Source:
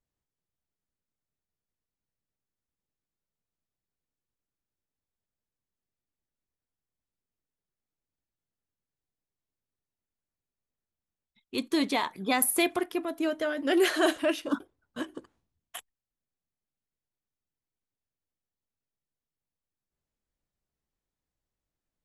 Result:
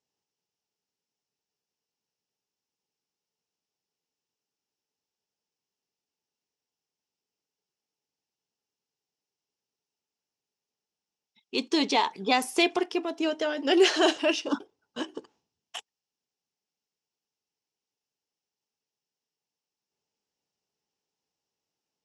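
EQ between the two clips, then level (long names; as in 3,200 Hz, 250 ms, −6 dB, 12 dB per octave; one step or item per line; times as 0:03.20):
bass and treble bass +4 dB, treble +9 dB
loudspeaker in its box 190–6,700 Hz, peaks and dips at 430 Hz +9 dB, 850 Hz +10 dB, 2,800 Hz +8 dB, 5,400 Hz +8 dB
−1.5 dB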